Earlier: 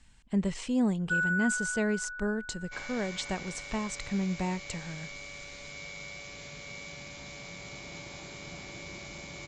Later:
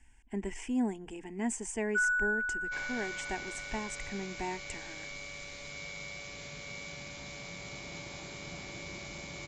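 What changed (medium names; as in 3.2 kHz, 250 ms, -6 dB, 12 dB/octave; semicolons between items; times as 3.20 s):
speech: add static phaser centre 820 Hz, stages 8; first sound: entry +0.85 s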